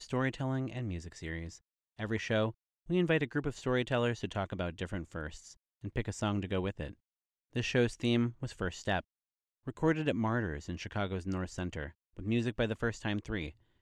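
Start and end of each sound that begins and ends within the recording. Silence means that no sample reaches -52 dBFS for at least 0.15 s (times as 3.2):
1.99–2.52
2.87–5.53
5.83–6.94
7.53–9.01
9.67–11.91
12.17–13.52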